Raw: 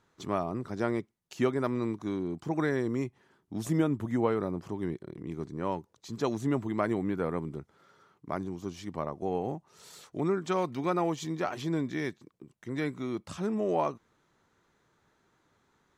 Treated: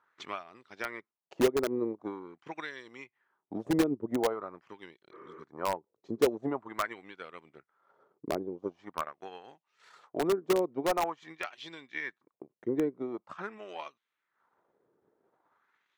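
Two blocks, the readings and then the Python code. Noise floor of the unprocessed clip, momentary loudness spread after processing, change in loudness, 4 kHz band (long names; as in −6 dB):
−72 dBFS, 21 LU, −1.0 dB, +2.5 dB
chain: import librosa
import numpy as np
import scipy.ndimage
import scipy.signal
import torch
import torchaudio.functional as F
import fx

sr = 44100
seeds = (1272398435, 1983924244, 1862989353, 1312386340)

p1 = fx.transient(x, sr, attack_db=9, sustain_db=-9)
p2 = fx.high_shelf(p1, sr, hz=4100.0, db=-4.0)
p3 = fx.wah_lfo(p2, sr, hz=0.45, low_hz=400.0, high_hz=3300.0, q=2.0)
p4 = fx.spec_repair(p3, sr, seeds[0], start_s=5.15, length_s=0.24, low_hz=310.0, high_hz=3100.0, source='after')
p5 = (np.mod(10.0 ** (23.5 / 20.0) * p4 + 1.0, 2.0) - 1.0) / 10.0 ** (23.5 / 20.0)
y = p4 + (p5 * librosa.db_to_amplitude(-4.5))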